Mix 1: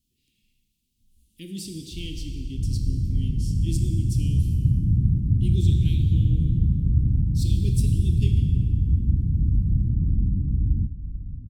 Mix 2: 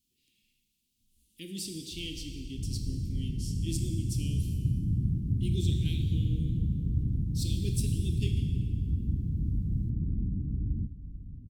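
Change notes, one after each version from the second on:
master: add low shelf 200 Hz -11 dB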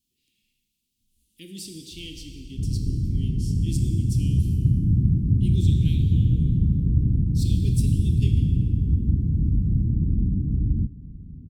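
second sound +9.0 dB

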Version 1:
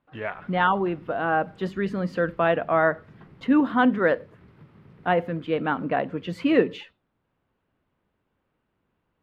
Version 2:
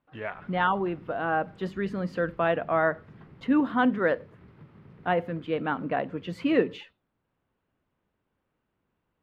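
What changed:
speech -3.5 dB; background: add high shelf 4500 Hz -6 dB

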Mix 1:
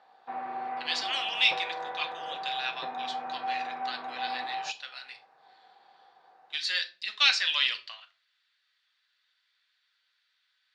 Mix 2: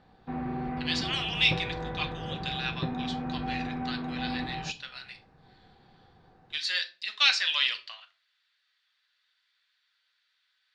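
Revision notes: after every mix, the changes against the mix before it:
background: remove resonant high-pass 740 Hz, resonance Q 1.7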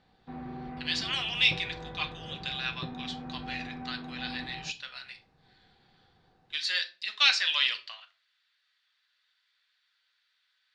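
background -7.0 dB

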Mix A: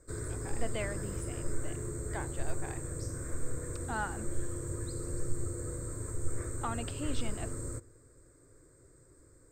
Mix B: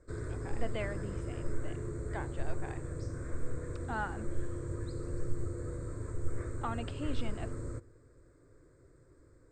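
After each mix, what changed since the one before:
master: add air absorption 140 m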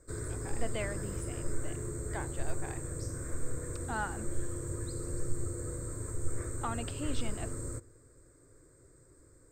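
master: remove air absorption 140 m

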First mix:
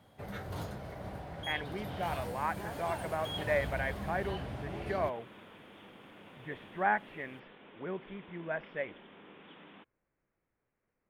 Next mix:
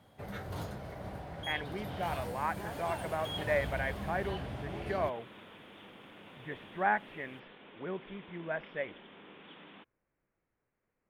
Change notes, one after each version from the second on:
second sound: remove air absorption 160 m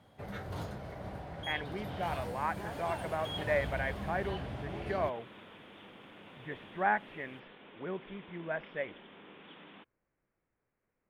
master: add high shelf 9100 Hz -7 dB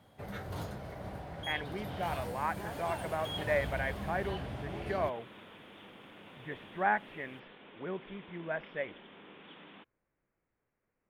master: add high shelf 9100 Hz +7 dB

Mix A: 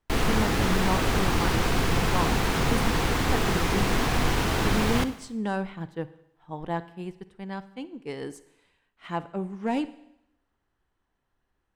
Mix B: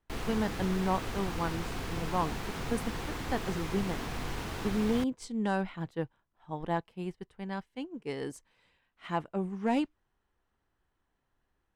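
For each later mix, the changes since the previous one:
background -10.5 dB; reverb: off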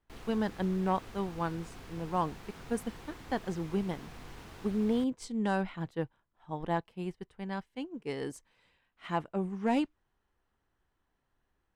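background -11.5 dB

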